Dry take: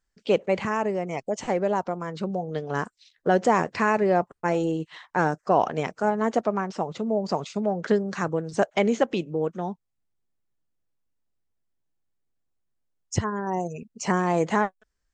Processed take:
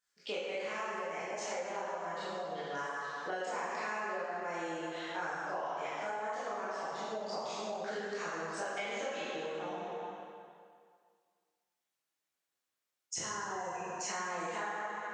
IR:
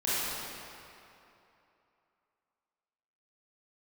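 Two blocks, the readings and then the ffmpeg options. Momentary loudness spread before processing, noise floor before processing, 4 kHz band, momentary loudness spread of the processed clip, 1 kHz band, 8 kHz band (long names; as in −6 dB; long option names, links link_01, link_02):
8 LU, −77 dBFS, −4.0 dB, 3 LU, −10.5 dB, −3.0 dB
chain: -filter_complex "[0:a]highpass=frequency=1500:poles=1[link_01];[1:a]atrim=start_sample=2205,asetrate=61740,aresample=44100[link_02];[link_01][link_02]afir=irnorm=-1:irlink=0,acompressor=threshold=-37dB:ratio=5"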